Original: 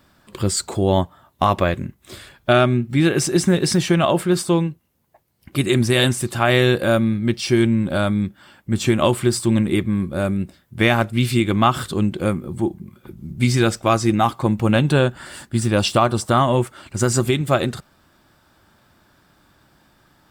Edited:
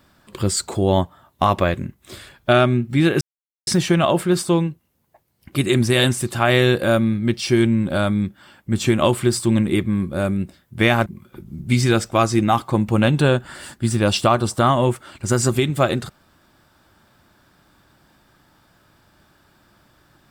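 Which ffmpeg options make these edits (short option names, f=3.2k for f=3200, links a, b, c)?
-filter_complex "[0:a]asplit=4[a][b][c][d];[a]atrim=end=3.21,asetpts=PTS-STARTPTS,afade=t=out:st=3.206:d=0.004:c=hsin[e];[b]atrim=start=3.21:end=3.67,asetpts=PTS-STARTPTS,volume=0[f];[c]atrim=start=3.67:end=11.062,asetpts=PTS-STARTPTS,afade=t=in:d=0.004:c=hsin[g];[d]atrim=start=12.768[h];[e][f][g]concat=n=3:v=0:a=1[i];[i][h]acrossfade=d=0.004:c1=hsin:c2=hsin"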